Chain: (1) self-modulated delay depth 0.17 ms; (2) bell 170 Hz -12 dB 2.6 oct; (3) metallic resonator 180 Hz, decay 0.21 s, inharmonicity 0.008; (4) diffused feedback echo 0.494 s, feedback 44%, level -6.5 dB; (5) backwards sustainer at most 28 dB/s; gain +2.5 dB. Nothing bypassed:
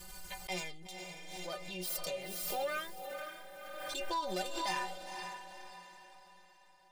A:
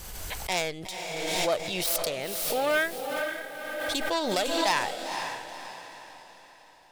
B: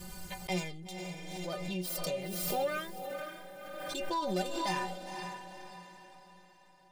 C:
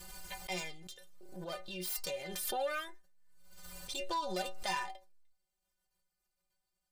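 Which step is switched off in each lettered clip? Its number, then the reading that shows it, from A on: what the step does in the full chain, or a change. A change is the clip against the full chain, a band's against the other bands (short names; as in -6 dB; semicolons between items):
3, 1 kHz band -3.0 dB; 2, 125 Hz band +10.0 dB; 4, momentary loudness spread change +1 LU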